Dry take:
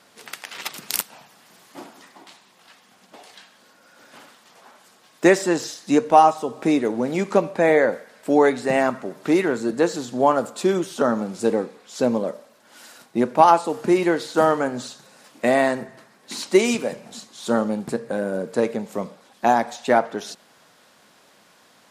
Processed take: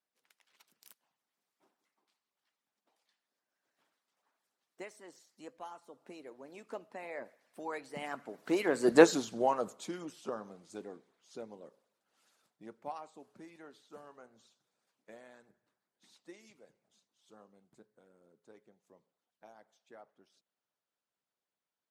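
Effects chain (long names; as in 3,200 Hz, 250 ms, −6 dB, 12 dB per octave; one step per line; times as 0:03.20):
source passing by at 0:08.99, 29 m/s, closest 3.9 metres
harmonic and percussive parts rebalanced harmonic −10 dB
level +2.5 dB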